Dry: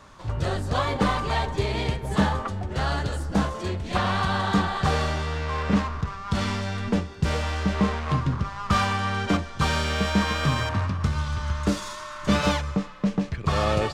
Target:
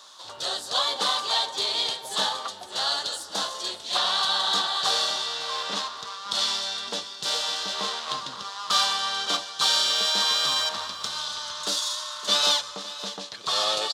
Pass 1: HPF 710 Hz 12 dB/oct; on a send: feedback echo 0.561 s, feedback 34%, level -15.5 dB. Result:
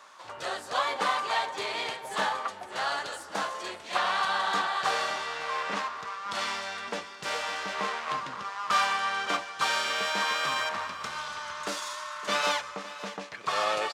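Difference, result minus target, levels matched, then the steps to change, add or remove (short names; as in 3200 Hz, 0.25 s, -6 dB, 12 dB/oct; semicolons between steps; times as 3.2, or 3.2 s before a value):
4000 Hz band -6.0 dB
add after HPF: resonant high shelf 2900 Hz +8 dB, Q 3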